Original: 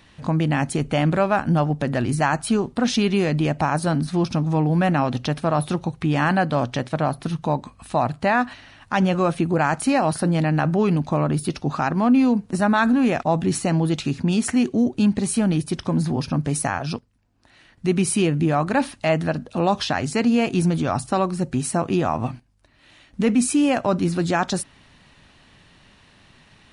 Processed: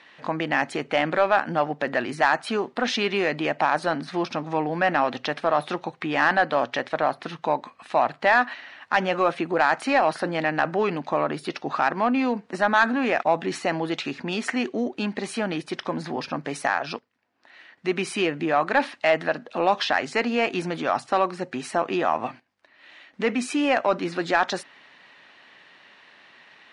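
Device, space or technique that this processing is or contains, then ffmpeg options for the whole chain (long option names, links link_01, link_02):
intercom: -af "highpass=430,lowpass=4100,equalizer=frequency=1900:width_type=o:width=0.56:gain=5,asoftclip=type=tanh:threshold=-10dB,volume=2dB"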